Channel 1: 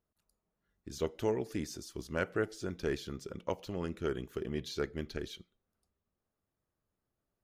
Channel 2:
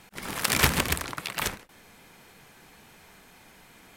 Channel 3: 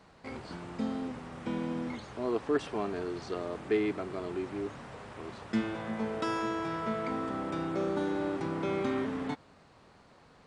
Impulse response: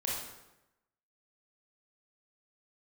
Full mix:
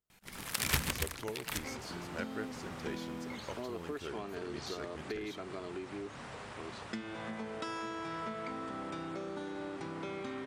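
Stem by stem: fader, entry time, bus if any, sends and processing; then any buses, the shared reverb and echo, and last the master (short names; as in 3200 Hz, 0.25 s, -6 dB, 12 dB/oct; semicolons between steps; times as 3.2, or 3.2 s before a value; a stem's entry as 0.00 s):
-6.5 dB, 0.00 s, no send, dry
-11.5 dB, 0.10 s, no send, low shelf 220 Hz +8.5 dB
+1.5 dB, 1.40 s, no send, compressor 6:1, threshold -37 dBFS, peak gain reduction 13 dB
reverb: off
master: tilt shelf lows -3.5 dB, about 1400 Hz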